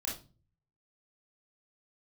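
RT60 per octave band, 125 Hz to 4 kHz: 0.85 s, 0.55 s, 0.40 s, 0.30 s, 0.25 s, 0.30 s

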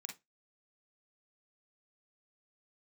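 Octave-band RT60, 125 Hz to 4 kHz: 0.25 s, 0.25 s, 0.20 s, 0.20 s, 0.15 s, 0.15 s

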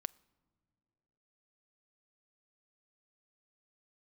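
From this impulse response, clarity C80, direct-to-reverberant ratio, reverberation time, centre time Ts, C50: 27.0 dB, 20.0 dB, no single decay rate, 2 ms, 25.0 dB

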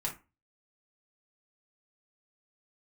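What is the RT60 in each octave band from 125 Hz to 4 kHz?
0.40 s, 0.30 s, 0.25 s, 0.30 s, 0.25 s, 0.15 s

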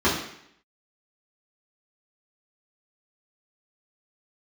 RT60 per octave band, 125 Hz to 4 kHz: 0.65 s, 0.70 s, 0.70 s, 0.70 s, 0.75 s, 0.70 s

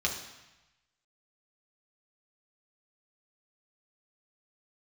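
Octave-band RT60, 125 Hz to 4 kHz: 1.3 s, 1.0 s, 0.95 s, 1.1 s, 1.1 s, 1.0 s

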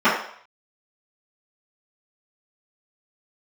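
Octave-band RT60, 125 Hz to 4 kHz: 0.30 s, 0.40 s, 0.60 s, 0.60 s, 0.60 s, 0.60 s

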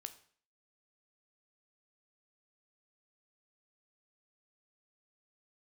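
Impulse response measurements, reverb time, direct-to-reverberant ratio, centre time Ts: 0.50 s, 8.5 dB, 6 ms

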